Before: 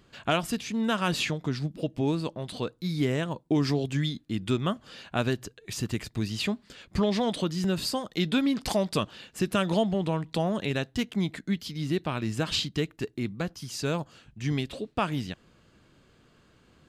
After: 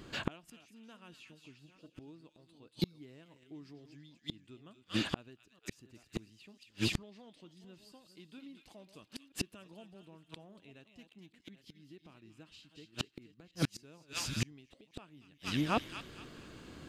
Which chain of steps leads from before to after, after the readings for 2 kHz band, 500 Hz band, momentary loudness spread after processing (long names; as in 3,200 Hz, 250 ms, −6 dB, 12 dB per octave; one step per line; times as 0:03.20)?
−10.0 dB, −17.5 dB, 22 LU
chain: delay that plays each chunk backwards 466 ms, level −12 dB
parametric band 310 Hz +6 dB 0.56 octaves
delay with a high-pass on its return 231 ms, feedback 35%, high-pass 2,200 Hz, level −3.5 dB
dynamic equaliser 2,700 Hz, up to +6 dB, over −50 dBFS, Q 5.4
gate with flip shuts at −25 dBFS, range −37 dB
level +7 dB